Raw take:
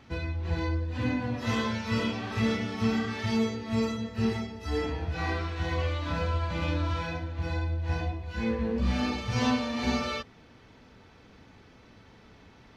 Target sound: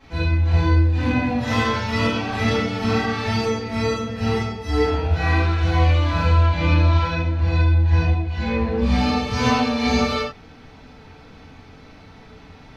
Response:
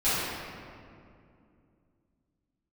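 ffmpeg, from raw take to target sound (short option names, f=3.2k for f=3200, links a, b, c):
-filter_complex "[0:a]asettb=1/sr,asplit=3[a][b][c];[a]atrim=end=6.424[d];[b]atrim=start=6.42:end=8.81,asetpts=PTS-STARTPTS,afade=t=in:d=0.004:c=qsin,afade=t=out:st=2.386:d=0.004:c=qsin,lowpass=6.1k[e];[c]atrim=start=8.806[f];[d][e]acrossfade=d=0.004:c1=hsin:c2=qsin[g];[g][f]acrossfade=d=0.004:c1=qsin:c2=hsin[h];[1:a]atrim=start_sample=2205,afade=t=out:st=0.15:d=0.01,atrim=end_sample=7056[i];[h][i]afir=irnorm=-1:irlink=0,volume=-1.5dB"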